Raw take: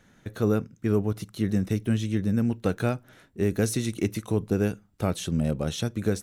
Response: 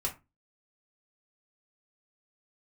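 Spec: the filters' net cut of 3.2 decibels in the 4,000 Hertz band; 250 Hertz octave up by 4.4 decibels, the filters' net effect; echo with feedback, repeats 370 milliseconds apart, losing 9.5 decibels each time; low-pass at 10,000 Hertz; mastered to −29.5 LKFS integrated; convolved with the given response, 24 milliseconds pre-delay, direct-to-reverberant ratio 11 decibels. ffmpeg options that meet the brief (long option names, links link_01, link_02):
-filter_complex "[0:a]lowpass=10000,equalizer=frequency=250:width_type=o:gain=5.5,equalizer=frequency=4000:width_type=o:gain=-4,aecho=1:1:370|740|1110|1480:0.335|0.111|0.0365|0.012,asplit=2[link_01][link_02];[1:a]atrim=start_sample=2205,adelay=24[link_03];[link_02][link_03]afir=irnorm=-1:irlink=0,volume=-14.5dB[link_04];[link_01][link_04]amix=inputs=2:normalize=0,volume=-5.5dB"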